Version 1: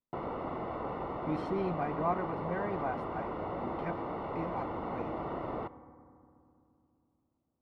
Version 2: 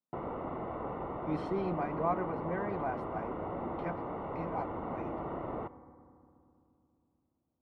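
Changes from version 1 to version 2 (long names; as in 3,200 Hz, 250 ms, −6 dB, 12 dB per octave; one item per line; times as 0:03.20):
speech: add Chebyshev high-pass filter 150 Hz, order 6
background: add high-frequency loss of the air 370 metres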